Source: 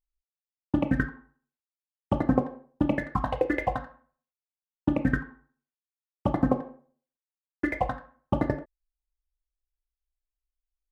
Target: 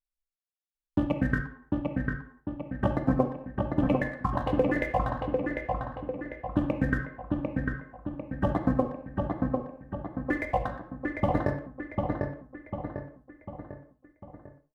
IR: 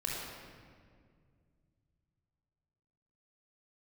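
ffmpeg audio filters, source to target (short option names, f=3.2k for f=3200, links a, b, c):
-filter_complex "[0:a]atempo=0.74,asplit=2[a][b];[b]adelay=748,lowpass=f=2.9k:p=1,volume=-3dB,asplit=2[c][d];[d]adelay=748,lowpass=f=2.9k:p=1,volume=0.51,asplit=2[e][f];[f]adelay=748,lowpass=f=2.9k:p=1,volume=0.51,asplit=2[g][h];[h]adelay=748,lowpass=f=2.9k:p=1,volume=0.51,asplit=2[i][j];[j]adelay=748,lowpass=f=2.9k:p=1,volume=0.51,asplit=2[k][l];[l]adelay=748,lowpass=f=2.9k:p=1,volume=0.51,asplit=2[m][n];[n]adelay=748,lowpass=f=2.9k:p=1,volume=0.51[o];[a][c][e][g][i][k][m][o]amix=inputs=8:normalize=0,agate=range=-7dB:threshold=-55dB:ratio=16:detection=peak,asplit=2[p][q];[1:a]atrim=start_sample=2205,atrim=end_sample=4410[r];[q][r]afir=irnorm=-1:irlink=0,volume=-10dB[s];[p][s]amix=inputs=2:normalize=0,volume=-3dB"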